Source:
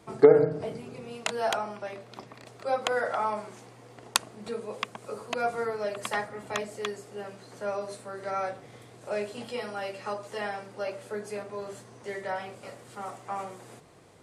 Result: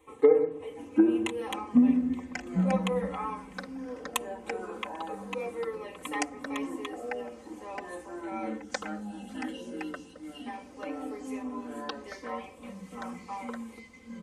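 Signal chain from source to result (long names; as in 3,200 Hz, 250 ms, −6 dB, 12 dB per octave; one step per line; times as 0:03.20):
time-frequency box erased 0:08.58–0:10.47, 220–2,600 Hz
phaser with its sweep stopped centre 1,000 Hz, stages 8
delay with pitch and tempo change per echo 667 ms, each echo −5 semitones, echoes 3
comb filter 3.9 ms, depth 81%
level −4.5 dB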